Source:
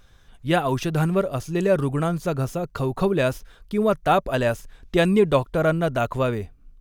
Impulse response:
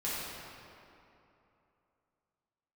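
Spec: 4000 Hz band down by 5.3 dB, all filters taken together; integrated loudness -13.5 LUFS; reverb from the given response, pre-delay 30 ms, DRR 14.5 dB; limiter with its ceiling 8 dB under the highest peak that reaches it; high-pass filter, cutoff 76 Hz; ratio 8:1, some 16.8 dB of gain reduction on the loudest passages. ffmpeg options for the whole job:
-filter_complex "[0:a]highpass=76,equalizer=f=4k:t=o:g=-7,acompressor=threshold=-32dB:ratio=8,alimiter=level_in=4.5dB:limit=-24dB:level=0:latency=1,volume=-4.5dB,asplit=2[a][b];[1:a]atrim=start_sample=2205,adelay=30[c];[b][c]afir=irnorm=-1:irlink=0,volume=-20.5dB[d];[a][d]amix=inputs=2:normalize=0,volume=24.5dB"

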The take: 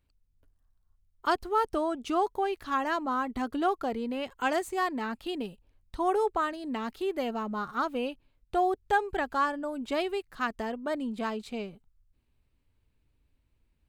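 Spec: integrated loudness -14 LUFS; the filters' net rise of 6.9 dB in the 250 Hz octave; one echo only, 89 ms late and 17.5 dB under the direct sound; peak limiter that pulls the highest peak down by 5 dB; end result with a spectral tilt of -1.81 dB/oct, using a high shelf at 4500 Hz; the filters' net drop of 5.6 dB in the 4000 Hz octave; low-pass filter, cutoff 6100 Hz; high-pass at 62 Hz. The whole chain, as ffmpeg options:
-af "highpass=62,lowpass=6.1k,equalizer=f=250:t=o:g=8.5,equalizer=f=4k:t=o:g=-6,highshelf=f=4.5k:g=-3.5,alimiter=limit=-20dB:level=0:latency=1,aecho=1:1:89:0.133,volume=15.5dB"

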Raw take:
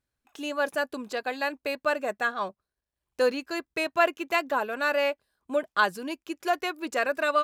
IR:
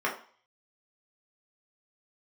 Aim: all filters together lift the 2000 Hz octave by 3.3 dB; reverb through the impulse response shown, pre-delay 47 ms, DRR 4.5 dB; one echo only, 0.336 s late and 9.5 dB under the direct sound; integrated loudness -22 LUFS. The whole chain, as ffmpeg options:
-filter_complex "[0:a]equalizer=f=2k:t=o:g=4.5,aecho=1:1:336:0.335,asplit=2[a][b];[1:a]atrim=start_sample=2205,adelay=47[c];[b][c]afir=irnorm=-1:irlink=0,volume=-15.5dB[d];[a][d]amix=inputs=2:normalize=0,volume=3dB"

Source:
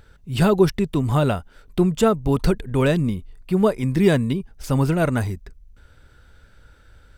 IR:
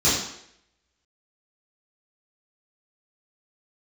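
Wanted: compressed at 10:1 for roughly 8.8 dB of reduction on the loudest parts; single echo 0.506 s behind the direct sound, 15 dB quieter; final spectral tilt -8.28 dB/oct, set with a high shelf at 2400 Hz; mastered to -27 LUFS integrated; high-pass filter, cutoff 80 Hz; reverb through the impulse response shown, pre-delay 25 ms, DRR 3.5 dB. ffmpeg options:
-filter_complex "[0:a]highpass=80,highshelf=f=2.4k:g=-7,acompressor=threshold=-20dB:ratio=10,aecho=1:1:506:0.178,asplit=2[a][b];[1:a]atrim=start_sample=2205,adelay=25[c];[b][c]afir=irnorm=-1:irlink=0,volume=-20.5dB[d];[a][d]amix=inputs=2:normalize=0,volume=-4.5dB"

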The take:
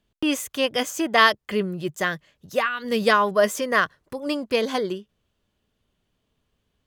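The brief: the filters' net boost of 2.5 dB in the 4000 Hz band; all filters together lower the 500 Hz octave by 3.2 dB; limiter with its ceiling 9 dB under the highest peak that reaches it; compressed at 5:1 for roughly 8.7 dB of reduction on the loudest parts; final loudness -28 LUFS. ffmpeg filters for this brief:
-af "equalizer=f=500:t=o:g=-4,equalizer=f=4k:t=o:g=3.5,acompressor=threshold=-20dB:ratio=5,volume=1.5dB,alimiter=limit=-16dB:level=0:latency=1"

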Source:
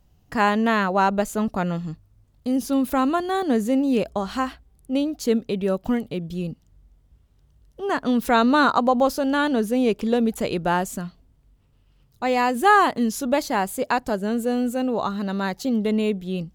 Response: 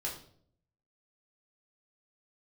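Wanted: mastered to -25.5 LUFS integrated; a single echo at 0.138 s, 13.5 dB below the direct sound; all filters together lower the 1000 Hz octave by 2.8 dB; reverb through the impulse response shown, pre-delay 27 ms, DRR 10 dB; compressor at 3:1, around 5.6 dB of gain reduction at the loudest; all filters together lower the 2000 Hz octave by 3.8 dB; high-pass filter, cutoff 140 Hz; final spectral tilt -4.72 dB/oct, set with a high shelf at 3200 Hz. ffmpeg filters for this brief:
-filter_complex "[0:a]highpass=140,equalizer=f=1k:t=o:g=-3,equalizer=f=2k:t=o:g=-6,highshelf=f=3.2k:g=7,acompressor=threshold=-22dB:ratio=3,aecho=1:1:138:0.211,asplit=2[a][b];[1:a]atrim=start_sample=2205,adelay=27[c];[b][c]afir=irnorm=-1:irlink=0,volume=-12dB[d];[a][d]amix=inputs=2:normalize=0,volume=0.5dB"

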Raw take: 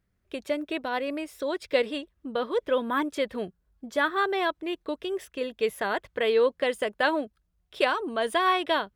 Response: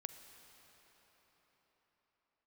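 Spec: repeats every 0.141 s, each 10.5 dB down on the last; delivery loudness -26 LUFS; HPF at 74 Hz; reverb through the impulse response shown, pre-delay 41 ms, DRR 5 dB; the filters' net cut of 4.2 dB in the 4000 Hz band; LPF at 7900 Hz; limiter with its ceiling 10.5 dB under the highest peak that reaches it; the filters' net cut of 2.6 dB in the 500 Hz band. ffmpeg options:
-filter_complex "[0:a]highpass=74,lowpass=7.9k,equalizer=f=500:t=o:g=-3,equalizer=f=4k:t=o:g=-5.5,alimiter=limit=-22dB:level=0:latency=1,aecho=1:1:141|282|423:0.299|0.0896|0.0269,asplit=2[a][b];[1:a]atrim=start_sample=2205,adelay=41[c];[b][c]afir=irnorm=-1:irlink=0,volume=-1.5dB[d];[a][d]amix=inputs=2:normalize=0,volume=5.5dB"

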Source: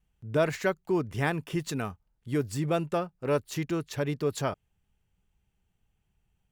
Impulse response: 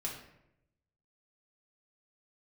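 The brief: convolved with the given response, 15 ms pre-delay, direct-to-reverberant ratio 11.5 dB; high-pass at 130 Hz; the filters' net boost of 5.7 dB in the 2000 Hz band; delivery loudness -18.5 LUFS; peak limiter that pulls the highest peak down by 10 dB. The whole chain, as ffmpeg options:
-filter_complex "[0:a]highpass=130,equalizer=f=2k:t=o:g=7.5,alimiter=limit=-18.5dB:level=0:latency=1,asplit=2[a][b];[1:a]atrim=start_sample=2205,adelay=15[c];[b][c]afir=irnorm=-1:irlink=0,volume=-12.5dB[d];[a][d]amix=inputs=2:normalize=0,volume=13.5dB"

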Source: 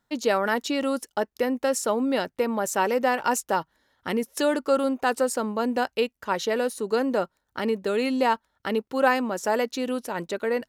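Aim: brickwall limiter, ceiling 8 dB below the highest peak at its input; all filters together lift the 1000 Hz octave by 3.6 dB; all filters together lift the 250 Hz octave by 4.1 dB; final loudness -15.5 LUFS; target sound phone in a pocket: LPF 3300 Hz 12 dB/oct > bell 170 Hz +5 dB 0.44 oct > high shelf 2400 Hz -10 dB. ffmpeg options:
-af "equalizer=f=250:t=o:g=3.5,equalizer=f=1k:t=o:g=6,alimiter=limit=-12.5dB:level=0:latency=1,lowpass=3.3k,equalizer=f=170:t=o:w=0.44:g=5,highshelf=f=2.4k:g=-10,volume=9.5dB"

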